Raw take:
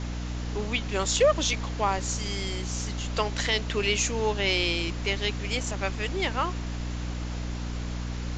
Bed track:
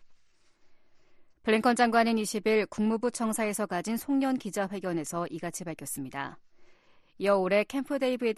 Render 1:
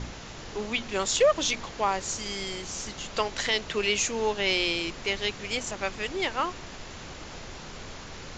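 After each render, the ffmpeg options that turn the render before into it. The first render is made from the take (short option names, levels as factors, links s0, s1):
-af "bandreject=f=60:t=h:w=4,bandreject=f=120:t=h:w=4,bandreject=f=180:t=h:w=4,bandreject=f=240:t=h:w=4,bandreject=f=300:t=h:w=4"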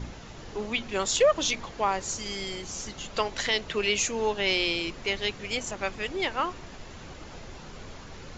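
-af "afftdn=nr=6:nf=-42"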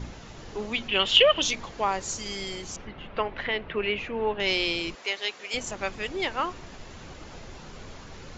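-filter_complex "[0:a]asettb=1/sr,asplit=3[s0][s1][s2];[s0]atrim=end=0.884[s3];[s1]atrim=start=0.88:end=1.42,asetpts=PTS-STARTPTS,afade=t=in:d=0.004:c=qsin,afade=t=out:st=0.536:d=0.004:c=qsin,lowpass=f=3000:t=q:w=13[s4];[s2]atrim=start=1.416[s5];[s3][s4]acrossfade=d=0.004:c1=hsin:c2=qsin[s6];[s6][s5]acrossfade=d=0.004:c1=qsin:c2=hsin,asettb=1/sr,asplit=3[s7][s8][s9];[s7]atrim=end=2.764[s10];[s8]atrim=start=2.76:end=4.4,asetpts=PTS-STARTPTS,afade=t=in:d=0.004:c=qsin,afade=t=out:st=1.636:d=0.004:c=qsin,lowpass=f=2700:w=0.5412,lowpass=f=2700:w=1.3066[s11];[s9]atrim=start=4.396[s12];[s10][s11]acrossfade=d=0.004:c1=hsin:c2=qsin[s13];[s13][s12]acrossfade=d=0.004:c1=qsin:c2=hsin,asettb=1/sr,asplit=3[s14][s15][s16];[s14]atrim=end=4.954[s17];[s15]atrim=start=4.95:end=5.54,asetpts=PTS-STARTPTS,afade=t=in:d=0.004:c=qsin,afade=t=out:st=0.586:d=0.004:c=qsin,highpass=520[s18];[s16]atrim=start=5.536[s19];[s17][s18]acrossfade=d=0.004:c1=hsin:c2=qsin[s20];[s20][s19]acrossfade=d=0.004:c1=qsin:c2=hsin"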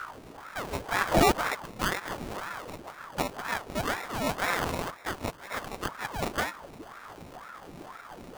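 -af "acrusher=samples=28:mix=1:aa=0.000001,aeval=exprs='val(0)*sin(2*PI*780*n/s+780*0.8/2*sin(2*PI*2*n/s))':c=same"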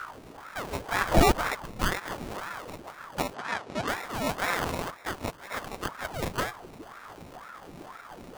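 -filter_complex "[0:a]asettb=1/sr,asplit=3[s0][s1][s2];[s0]atrim=end=0.954[s3];[s1]atrim=start=0.95:end=1.98,asetpts=PTS-STARTPTS,afade=t=in:d=0.004:c=qsin,afade=t=out:st=1.026:d=0.004:c=qsin,lowshelf=f=87:g=10.5[s4];[s2]atrim=start=1.976[s5];[s3][s4]acrossfade=d=0.004:c1=hsin:c2=qsin[s6];[s6][s5]acrossfade=d=0.004:c1=qsin:c2=hsin,asettb=1/sr,asplit=3[s7][s8][s9];[s7]atrim=end=3.344[s10];[s8]atrim=start=3.34:end=3.88,asetpts=PTS-STARTPTS,afade=t=in:d=0.004:c=qsin,afade=t=out:st=0.536:d=0.004:c=qsin,highpass=100,lowpass=6400[s11];[s9]atrim=start=3.876[s12];[s10][s11]acrossfade=d=0.004:c1=hsin:c2=qsin[s13];[s13][s12]acrossfade=d=0.004:c1=qsin:c2=hsin,asettb=1/sr,asplit=3[s14][s15][s16];[s14]atrim=end=6.014[s17];[s15]atrim=start=6.01:end=6.69,asetpts=PTS-STARTPTS,afade=t=in:d=0.004:c=qsin,afade=t=out:st=0.676:d=0.004:c=qsin,afreqshift=-190[s18];[s16]atrim=start=6.686[s19];[s17][s18]acrossfade=d=0.004:c1=hsin:c2=qsin[s20];[s20][s19]acrossfade=d=0.004:c1=qsin:c2=hsin"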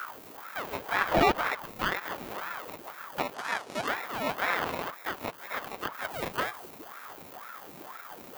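-filter_complex "[0:a]aemphasis=mode=production:type=bsi,acrossover=split=3600[s0][s1];[s1]acompressor=threshold=0.01:ratio=4:attack=1:release=60[s2];[s0][s2]amix=inputs=2:normalize=0"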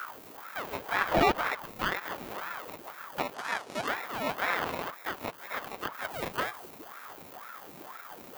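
-af "volume=0.891"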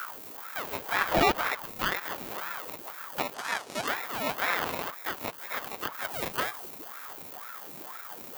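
-af "highshelf=f=3900:g=8"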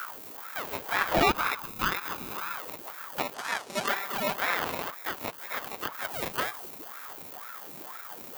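-filter_complex "[0:a]asettb=1/sr,asplit=3[s0][s1][s2];[s0]atrim=end=1.264[s3];[s1]atrim=start=1.26:end=2.56,asetpts=PTS-STARTPTS,afade=t=in:d=0.004:c=qsin,afade=t=out:st=1.296:d=0.004:c=qsin,aecho=1:1:0.8:0.47,atrim=end_sample=57330[s4];[s2]atrim=start=2.556[s5];[s3][s4]acrossfade=d=0.004:c1=hsin:c2=qsin[s6];[s6][s5]acrossfade=d=0.004:c1=qsin:c2=hsin,asettb=1/sr,asplit=3[s7][s8][s9];[s7]atrim=end=3.694[s10];[s8]atrim=start=3.69:end=4.37,asetpts=PTS-STARTPTS,afade=t=in:d=0.004:c=qsin,afade=t=out:st=0.676:d=0.004:c=qsin,aecho=1:1:5.1:0.7,atrim=end_sample=29988[s11];[s9]atrim=start=4.366[s12];[s10][s11]acrossfade=d=0.004:c1=hsin:c2=qsin[s13];[s13][s12]acrossfade=d=0.004:c1=qsin:c2=hsin"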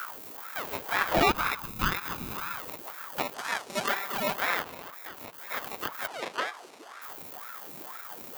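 -filter_complex "[0:a]asplit=3[s0][s1][s2];[s0]afade=t=out:st=1.32:d=0.02[s3];[s1]asubboost=boost=3.5:cutoff=250,afade=t=in:st=1.32:d=0.02,afade=t=out:st=2.68:d=0.02[s4];[s2]afade=t=in:st=2.68:d=0.02[s5];[s3][s4][s5]amix=inputs=3:normalize=0,asplit=3[s6][s7][s8];[s6]afade=t=out:st=4.61:d=0.02[s9];[s7]acompressor=threshold=0.0141:ratio=6:attack=3.2:release=140:knee=1:detection=peak,afade=t=in:st=4.61:d=0.02,afade=t=out:st=5.46:d=0.02[s10];[s8]afade=t=in:st=5.46:d=0.02[s11];[s9][s10][s11]amix=inputs=3:normalize=0,asettb=1/sr,asplit=3[s12][s13][s14];[s12]atrim=end=6.074[s15];[s13]atrim=start=6.07:end=7.02,asetpts=PTS-STARTPTS,afade=t=in:d=0.004:c=qsin,afade=t=out:st=0.946:d=0.004:c=qsin,highpass=320,lowpass=6000[s16];[s14]atrim=start=7.016[s17];[s15][s16]acrossfade=d=0.004:c1=hsin:c2=qsin[s18];[s18][s17]acrossfade=d=0.004:c1=qsin:c2=hsin"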